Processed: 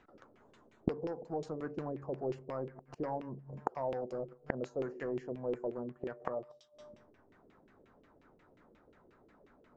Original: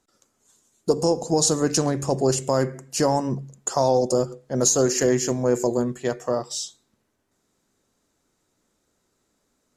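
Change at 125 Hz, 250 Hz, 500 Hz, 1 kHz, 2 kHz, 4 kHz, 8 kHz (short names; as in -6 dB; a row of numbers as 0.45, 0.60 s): -18.0 dB, -16.5 dB, -16.0 dB, -15.0 dB, -14.0 dB, under -30 dB, under -40 dB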